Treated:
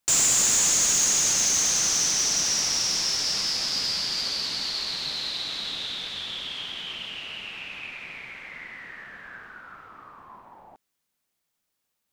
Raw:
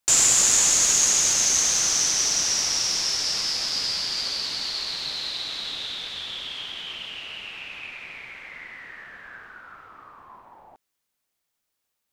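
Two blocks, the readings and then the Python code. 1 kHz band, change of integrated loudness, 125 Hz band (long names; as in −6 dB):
−1.0 dB, −2.0 dB, +1.0 dB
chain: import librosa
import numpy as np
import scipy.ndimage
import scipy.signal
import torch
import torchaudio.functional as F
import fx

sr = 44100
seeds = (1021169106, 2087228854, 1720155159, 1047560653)

y = fx.peak_eq(x, sr, hz=190.0, db=4.5, octaves=1.1)
y = 10.0 ** (-15.0 / 20.0) * np.tanh(y / 10.0 ** (-15.0 / 20.0))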